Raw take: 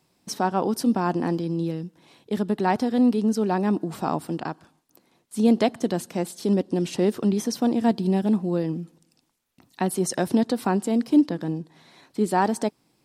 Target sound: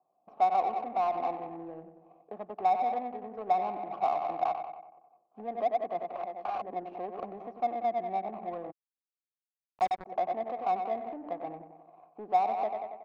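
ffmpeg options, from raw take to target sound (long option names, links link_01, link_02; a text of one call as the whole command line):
ffmpeg -i in.wav -filter_complex "[0:a]asplit=2[link_01][link_02];[link_02]asoftclip=type=tanh:threshold=-20dB,volume=-6.5dB[link_03];[link_01][link_03]amix=inputs=2:normalize=0,aecho=1:1:93|186|279|372|465|558|651:0.316|0.19|0.114|0.0683|0.041|0.0246|0.0148,asettb=1/sr,asplit=3[link_04][link_05][link_06];[link_04]atrim=end=6.084[link_07];[link_05]atrim=start=6.08:end=6.66,asetpts=PTS-STARTPTS,afade=type=in:duration=0.004:curve=qsin,afade=type=out:start_time=0.576:duration=0.004:curve=qsin,aeval=exprs='(mod(9.44*val(0)+1,2)-1)/9.44':channel_layout=same[link_08];[link_06]atrim=start=6.656[link_09];[link_07][link_08]acrossfade=duration=0.004:curve1=hsin:curve2=qsin[link_10];[link_10][link_09]acrossfade=duration=0.004:curve1=qsin:curve2=hsin,acrossover=split=400[link_11][link_12];[link_12]acompressor=threshold=-23dB:ratio=6[link_13];[link_11][link_13]amix=inputs=2:normalize=0,alimiter=limit=-17dB:level=0:latency=1:release=88,asplit=3[link_14][link_15][link_16];[link_14]bandpass=frequency=730:width_type=q:width=8,volume=0dB[link_17];[link_15]bandpass=frequency=1090:width_type=q:width=8,volume=-6dB[link_18];[link_16]bandpass=frequency=2440:width_type=q:width=8,volume=-9dB[link_19];[link_17][link_18][link_19]amix=inputs=3:normalize=0,equalizer=frequency=830:width=1.2:gain=10,asplit=3[link_20][link_21][link_22];[link_20]afade=type=out:start_time=8.7:duration=0.02[link_23];[link_21]acrusher=bits=4:mix=0:aa=0.5,afade=type=in:start_time=8.7:duration=0.02,afade=type=out:start_time=10.05:duration=0.02[link_24];[link_22]afade=type=in:start_time=10.05:duration=0.02[link_25];[link_23][link_24][link_25]amix=inputs=3:normalize=0,adynamicsmooth=sensitivity=4:basefreq=730,highshelf=frequency=5800:gain=-11.5" out.wav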